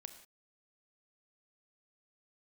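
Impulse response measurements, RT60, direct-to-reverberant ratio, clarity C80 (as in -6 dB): not exponential, 8.0 dB, 12.0 dB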